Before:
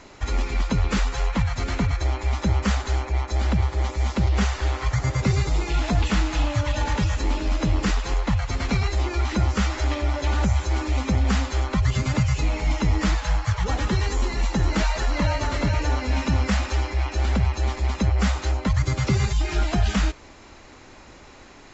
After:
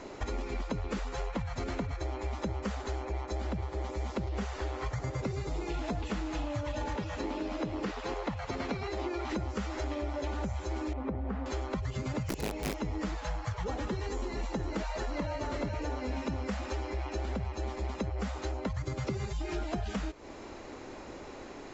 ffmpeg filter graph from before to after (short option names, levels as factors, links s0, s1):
-filter_complex "[0:a]asettb=1/sr,asplit=3[s0][s1][s2];[s0]atrim=end=6.964[s3];[s1]atrim=start=6.96:end=9.3,asetpts=PTS-STARTPTS,afade=t=in:d=0.004:c=qsin,afade=t=out:st=2.336:d=0.004:c=qsin,acrossover=split=5800[s4][s5];[s5]acompressor=threshold=0.00158:ratio=4:attack=1:release=60[s6];[s4][s6]amix=inputs=2:normalize=0,highpass=f=160:p=1[s7];[s2]atrim=start=9.296[s8];[s3][s7]acrossfade=d=0.004:c1=hsin:c2=qsin[s9];[s9][s8]acrossfade=d=0.004:c1=qsin:c2=hsin,asettb=1/sr,asplit=3[s10][s11][s12];[s10]atrim=end=10.934[s13];[s11]atrim=start=10.93:end=11.46,asetpts=PTS-STARTPTS,afade=t=in:d=0.004:c=qsin,afade=t=out:st=0.526:d=0.004:c=qsin,lowpass=1500,acompressor=threshold=0.0447:ratio=1.5:attack=3.2:release=140:knee=1:detection=peak[s14];[s12]atrim=start=11.456[s15];[s13][s14]acrossfade=d=0.004:c1=hsin:c2=qsin[s16];[s16][s15]acrossfade=d=0.004:c1=qsin:c2=hsin,asettb=1/sr,asplit=3[s17][s18][s19];[s17]atrim=end=12.294[s20];[s18]atrim=start=12.29:end=12.75,asetpts=PTS-STARTPTS,afade=t=in:d=0.004:c=qsin,afade=t=out:st=0.456:d=0.004:c=qsin,equalizer=f=1300:t=o:w=0.82:g=-4.5,aeval=exprs='(mod(6.31*val(0)+1,2)-1)/6.31':c=same[s21];[s19]atrim=start=12.746[s22];[s20][s21]acrossfade=d=0.004:c1=hsin:c2=qsin[s23];[s23][s22]acrossfade=d=0.004:c1=qsin:c2=hsin,equalizer=f=420:w=0.59:g=10,acompressor=threshold=0.0398:ratio=6,volume=0.631"